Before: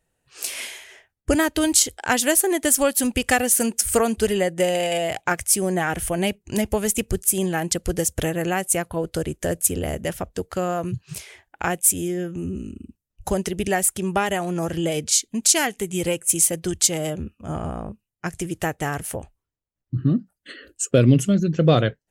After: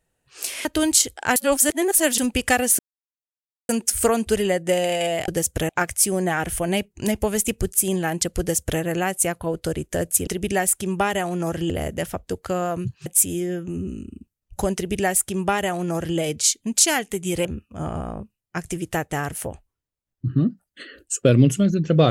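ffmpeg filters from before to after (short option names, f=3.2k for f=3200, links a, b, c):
-filter_complex "[0:a]asplit=11[a][b][c][d][e][f][g][h][i][j][k];[a]atrim=end=0.652[l];[b]atrim=start=1.458:end=2.172[m];[c]atrim=start=2.168:end=2.992,asetpts=PTS-STARTPTS,areverse[n];[d]atrim=start=2.988:end=3.6,asetpts=PTS-STARTPTS,afade=t=out:st=0.608:d=0.004:c=hsin,apad=pad_dur=0.9[o];[e]atrim=start=3.6:end=5.192,asetpts=PTS-STARTPTS,afade=t=in:d=0.004:c=hsin[p];[f]atrim=start=7.898:end=8.312[q];[g]atrim=start=5.188:end=9.772[r];[h]atrim=start=13.428:end=14.862[s];[i]atrim=start=9.768:end=11.132[t];[j]atrim=start=11.738:end=16.132[u];[k]atrim=start=17.138[v];[l][m]acrossfade=d=0.004:c1=hsin:c2=hsin[w];[w][n]acrossfade=d=0.004:c1=hsin:c2=hsin[x];[o][p]concat=n=2:v=0:a=1[y];[x][y]acrossfade=d=0.004:c1=hsin:c2=hsin[z];[z][q]acrossfade=d=0.004:c1=hsin:c2=hsin[aa];[aa][r]acrossfade=d=0.004:c1=hsin:c2=hsin[ab];[ab][s]acrossfade=d=0.004:c1=hsin:c2=hsin[ac];[ac][t]acrossfade=d=0.004:c1=hsin:c2=hsin[ad];[ad][u]acrossfade=d=0.004:c1=hsin:c2=hsin[ae];[ae][v]acrossfade=d=0.004:c1=hsin:c2=hsin"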